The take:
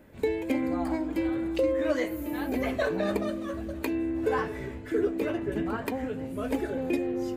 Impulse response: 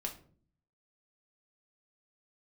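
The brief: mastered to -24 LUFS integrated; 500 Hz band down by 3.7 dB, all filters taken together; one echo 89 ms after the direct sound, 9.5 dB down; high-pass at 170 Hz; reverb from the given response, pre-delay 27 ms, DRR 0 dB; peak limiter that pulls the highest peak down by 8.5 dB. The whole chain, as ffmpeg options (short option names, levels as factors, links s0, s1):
-filter_complex "[0:a]highpass=170,equalizer=f=500:t=o:g=-4.5,alimiter=level_in=1.12:limit=0.0631:level=0:latency=1,volume=0.891,aecho=1:1:89:0.335,asplit=2[s0][s1];[1:a]atrim=start_sample=2205,adelay=27[s2];[s1][s2]afir=irnorm=-1:irlink=0,volume=1[s3];[s0][s3]amix=inputs=2:normalize=0,volume=2"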